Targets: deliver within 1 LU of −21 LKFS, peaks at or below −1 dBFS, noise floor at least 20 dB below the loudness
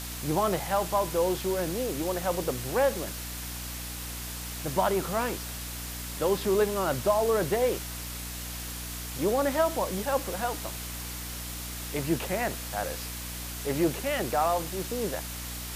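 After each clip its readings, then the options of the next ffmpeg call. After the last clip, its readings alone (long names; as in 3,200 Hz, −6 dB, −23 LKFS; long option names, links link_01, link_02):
mains hum 60 Hz; hum harmonics up to 300 Hz; level of the hum −38 dBFS; background noise floor −37 dBFS; target noise floor −50 dBFS; integrated loudness −29.5 LKFS; sample peak −13.0 dBFS; target loudness −21.0 LKFS
→ -af "bandreject=frequency=60:width_type=h:width=6,bandreject=frequency=120:width_type=h:width=6,bandreject=frequency=180:width_type=h:width=6,bandreject=frequency=240:width_type=h:width=6,bandreject=frequency=300:width_type=h:width=6"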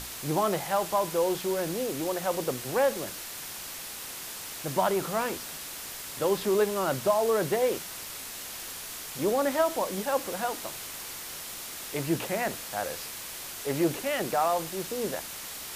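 mains hum none found; background noise floor −40 dBFS; target noise floor −50 dBFS
→ -af "afftdn=noise_reduction=10:noise_floor=-40"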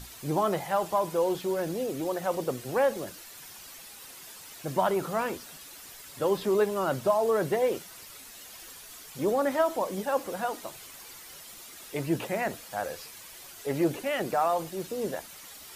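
background noise floor −47 dBFS; target noise floor −50 dBFS
→ -af "afftdn=noise_reduction=6:noise_floor=-47"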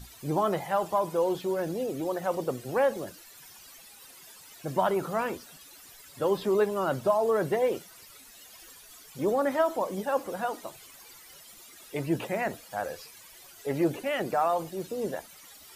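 background noise floor −51 dBFS; integrated loudness −29.5 LKFS; sample peak −13.0 dBFS; target loudness −21.0 LKFS
→ -af "volume=8.5dB"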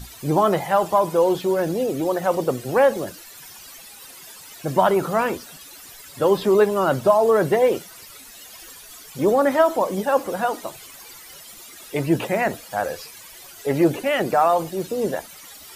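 integrated loudness −21.0 LKFS; sample peak −4.5 dBFS; background noise floor −43 dBFS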